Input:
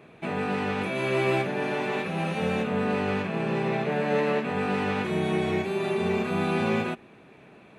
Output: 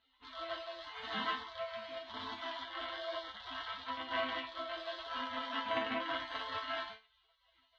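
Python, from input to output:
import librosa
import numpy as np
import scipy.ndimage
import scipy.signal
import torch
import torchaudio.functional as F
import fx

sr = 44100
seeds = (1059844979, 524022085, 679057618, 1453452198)

p1 = fx.rattle_buzz(x, sr, strikes_db=-31.0, level_db=-19.0)
p2 = scipy.signal.sosfilt(scipy.signal.butter(2, 78.0, 'highpass', fs=sr, output='sos'), p1)
p3 = fx.spec_gate(p2, sr, threshold_db=-25, keep='weak')
p4 = scipy.signal.sosfilt(scipy.signal.butter(4, 4000.0, 'lowpass', fs=sr, output='sos'), p3)
p5 = fx.small_body(p4, sr, hz=(250.0, 680.0, 1000.0), ring_ms=70, db=12)
p6 = fx.volume_shaper(p5, sr, bpm=91, per_beat=1, depth_db=-8, release_ms=152.0, shape='slow start')
p7 = p5 + (p6 * librosa.db_to_amplitude(-1.0))
p8 = fx.high_shelf(p7, sr, hz=2700.0, db=-10.5)
p9 = fx.resonator_bank(p8, sr, root=57, chord='minor', decay_s=0.26)
y = p9 * librosa.db_to_amplitude(18.0)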